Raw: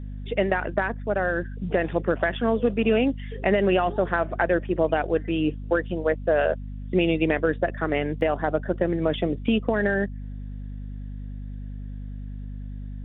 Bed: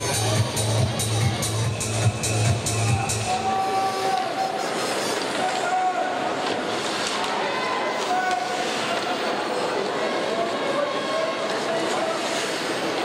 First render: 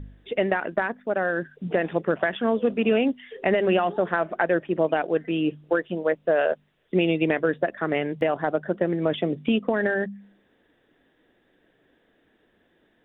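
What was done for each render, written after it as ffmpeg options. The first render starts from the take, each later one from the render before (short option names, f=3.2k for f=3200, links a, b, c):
-af "bandreject=f=50:t=h:w=4,bandreject=f=100:t=h:w=4,bandreject=f=150:t=h:w=4,bandreject=f=200:t=h:w=4,bandreject=f=250:t=h:w=4"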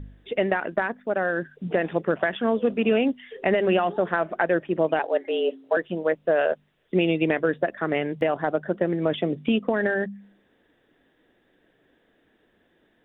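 -filter_complex "[0:a]asettb=1/sr,asplit=3[a][b][c];[a]atrim=end=4.994[d];[b]atrim=start=4.99:end=5.77,asetpts=PTS-STARTPTS,afade=t=in:d=0.004:c=qsin,afade=t=out:st=0.776:d=0.004:c=qsin,afreqshift=120[e];[c]atrim=start=5.766[f];[d][e]acrossfade=d=0.004:c1=hsin:c2=qsin[g];[g][f]acrossfade=d=0.004:c1=qsin:c2=hsin"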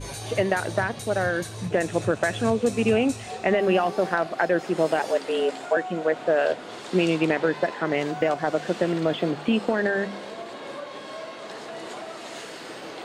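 -filter_complex "[1:a]volume=-12.5dB[a];[0:a][a]amix=inputs=2:normalize=0"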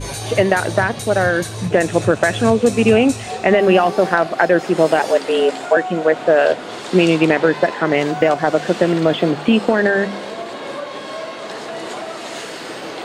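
-af "volume=8.5dB,alimiter=limit=-1dB:level=0:latency=1"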